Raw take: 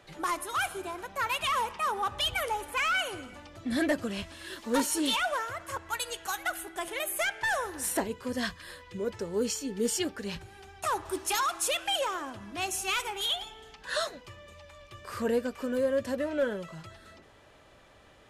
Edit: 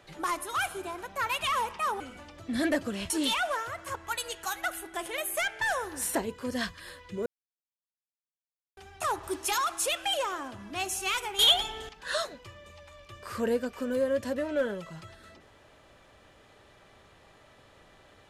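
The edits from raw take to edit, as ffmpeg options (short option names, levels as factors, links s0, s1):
-filter_complex "[0:a]asplit=7[s0][s1][s2][s3][s4][s5][s6];[s0]atrim=end=2.002[s7];[s1]atrim=start=3.168:end=4.272[s8];[s2]atrim=start=4.918:end=9.08,asetpts=PTS-STARTPTS,afade=t=out:st=4.158:d=0.004:c=hsin[s9];[s3]atrim=start=9.08:end=10.59,asetpts=PTS-STARTPTS,volume=0[s10];[s4]atrim=start=10.59:end=13.212,asetpts=PTS-STARTPTS,afade=t=in:d=0.004:c=hsin[s11];[s5]atrim=start=13.208:end=13.712,asetpts=PTS-STARTPTS,volume=2.99[s12];[s6]atrim=start=13.708[s13];[s7][s8]acrossfade=d=0.004:c1=hsin:c2=hsin[s14];[s9][s10][s11]concat=n=3:v=0:a=1[s15];[s14][s15]acrossfade=d=0.004:c1=hsin:c2=hsin[s16];[s16][s12]acrossfade=d=0.004:c1=hsin:c2=hsin[s17];[s17][s13]acrossfade=d=0.004:c1=hsin:c2=hsin"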